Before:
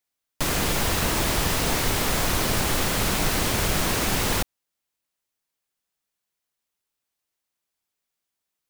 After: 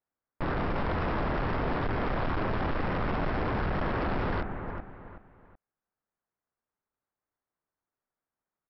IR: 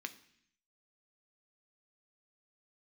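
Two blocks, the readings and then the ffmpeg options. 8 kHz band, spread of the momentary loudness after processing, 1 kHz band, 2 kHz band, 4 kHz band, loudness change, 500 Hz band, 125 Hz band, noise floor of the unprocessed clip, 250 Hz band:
below −40 dB, 9 LU, −3.5 dB, −8.0 dB, −19.5 dB, −8.0 dB, −3.5 dB, −4.0 dB, −84 dBFS, −3.5 dB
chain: -af "lowpass=frequency=1600:width=0.5412,lowpass=frequency=1600:width=1.3066,aecho=1:1:376|752|1128:0.282|0.0902|0.0289,aresample=11025,asoftclip=type=hard:threshold=-26.5dB,aresample=44100"

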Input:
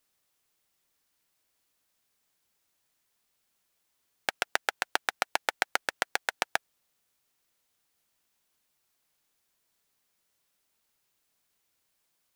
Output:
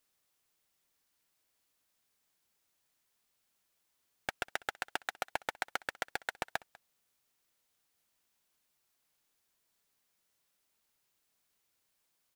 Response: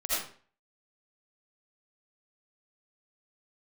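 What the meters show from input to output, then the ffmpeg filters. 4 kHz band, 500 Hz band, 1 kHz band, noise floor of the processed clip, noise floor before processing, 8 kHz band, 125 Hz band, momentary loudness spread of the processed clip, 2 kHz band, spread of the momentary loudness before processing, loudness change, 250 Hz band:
−9.5 dB, −6.5 dB, −7.0 dB, −79 dBFS, −77 dBFS, −10.0 dB, +0.5 dB, 3 LU, −7.5 dB, 4 LU, −8.0 dB, −4.5 dB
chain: -af "asoftclip=type=tanh:threshold=-16.5dB,aecho=1:1:196:0.075,volume=-2.5dB"

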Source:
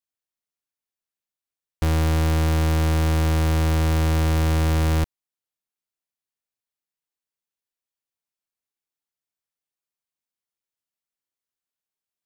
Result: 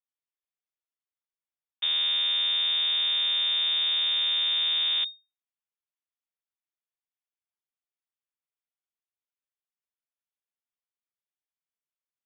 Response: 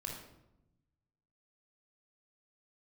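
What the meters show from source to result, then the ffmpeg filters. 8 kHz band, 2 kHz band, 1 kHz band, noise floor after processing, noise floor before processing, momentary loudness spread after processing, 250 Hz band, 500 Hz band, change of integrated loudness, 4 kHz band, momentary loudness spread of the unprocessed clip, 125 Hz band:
below −40 dB, −4.0 dB, −16.0 dB, below −85 dBFS, below −85 dBFS, 3 LU, below −35 dB, below −25 dB, −1.5 dB, +16.0 dB, 3 LU, below −40 dB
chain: -af "lowpass=frequency=3100:width_type=q:width=0.5098,lowpass=frequency=3100:width_type=q:width=0.6013,lowpass=frequency=3100:width_type=q:width=0.9,lowpass=frequency=3100:width_type=q:width=2.563,afreqshift=-3700,volume=-6.5dB"

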